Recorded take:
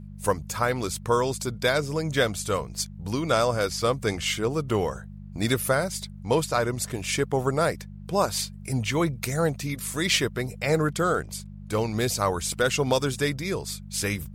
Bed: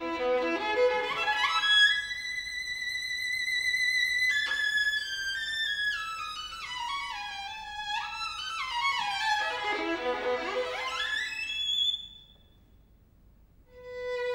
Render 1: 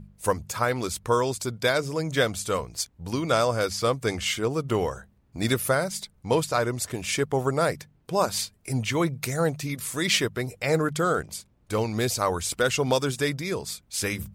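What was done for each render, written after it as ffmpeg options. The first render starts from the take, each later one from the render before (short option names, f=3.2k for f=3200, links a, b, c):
-af "bandreject=f=50:t=h:w=4,bandreject=f=100:t=h:w=4,bandreject=f=150:t=h:w=4,bandreject=f=200:t=h:w=4"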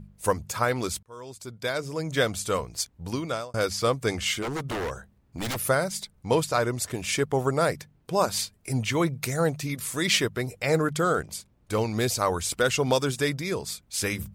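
-filter_complex "[0:a]asettb=1/sr,asplit=3[a][b][c];[a]atrim=end=4.424[d];[b]atrim=start=4.42:end=5.57,asetpts=PTS-STARTPTS,afade=t=in:d=0.004:c=qsin,afade=t=out:st=1.146:d=0.004:c=qsin,aeval=exprs='0.0596*(abs(mod(val(0)/0.0596+3,4)-2)-1)':c=same[e];[c]atrim=start=5.566[f];[d][e]acrossfade=d=0.004:c1=hsin:c2=qsin[g];[g][f]acrossfade=d=0.004:c1=qsin:c2=hsin,asplit=3[h][i][j];[h]atrim=end=1.03,asetpts=PTS-STARTPTS,afade=t=out:st=1.026:d=0.004:c=hsin[k];[i]atrim=start=1.03:end=3.54,asetpts=PTS-STARTPTS,afade=t=in:d=1.31,afade=t=out:st=2.03:d=0.48[l];[j]atrim=start=3.54,asetpts=PTS-STARTPTS,afade=t=in:d=0.004:c=hsin[m];[k][l][m]concat=n=3:v=0:a=1"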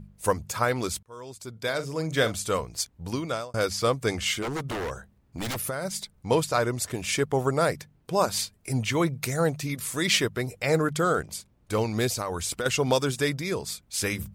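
-filter_complex "[0:a]asettb=1/sr,asplit=3[a][b][c];[a]atrim=end=1.514[d];[b]atrim=start=1.51:end=2.36,asetpts=PTS-STARTPTS,afade=t=in:d=0.004:c=qsin,afade=t=out:st=0.846:d=0.004:c=qsin,asplit=2[e][f];[f]adelay=44,volume=-12dB[g];[e][g]amix=inputs=2:normalize=0,atrim=end_sample=37485[h];[c]atrim=start=2.356[i];[d][h]acrossfade=d=0.004:c1=hsin:c2=qsin[j];[j][i]acrossfade=d=0.004:c1=qsin:c2=hsin,asplit=3[k][l][m];[k]afade=t=out:st=4.69:d=0.02[n];[l]acompressor=threshold=-27dB:ratio=6:attack=3.2:release=140:knee=1:detection=peak,afade=t=in:st=4.69:d=0.02,afade=t=out:st=5.84:d=0.02[o];[m]afade=t=in:st=5.84:d=0.02[p];[n][o][p]amix=inputs=3:normalize=0,asettb=1/sr,asplit=3[q][r][s];[q]atrim=end=12.074[t];[r]atrim=start=12.07:end=12.66,asetpts=PTS-STARTPTS,afade=t=in:d=0.004:c=qsin,afade=t=out:st=0.586:d=0.004:c=qsin,acompressor=threshold=-25dB:ratio=10:attack=3.2:release=140:knee=1:detection=peak[u];[s]atrim=start=12.656[v];[t][u]acrossfade=d=0.004:c1=hsin:c2=qsin[w];[w][v]acrossfade=d=0.004:c1=qsin:c2=hsin"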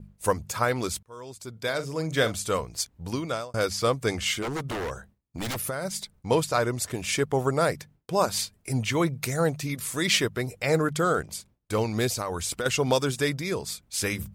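-af "agate=range=-33dB:threshold=-48dB:ratio=3:detection=peak"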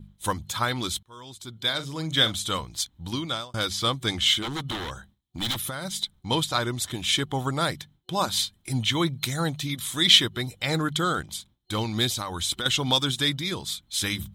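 -af "superequalizer=7b=0.355:8b=0.501:13b=3.98"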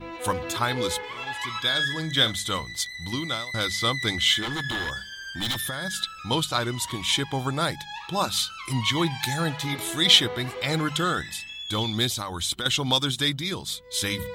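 -filter_complex "[1:a]volume=-5dB[a];[0:a][a]amix=inputs=2:normalize=0"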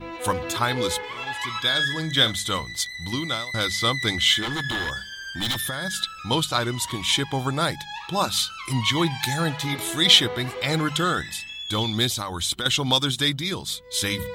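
-af "volume=2dB,alimiter=limit=-2dB:level=0:latency=1"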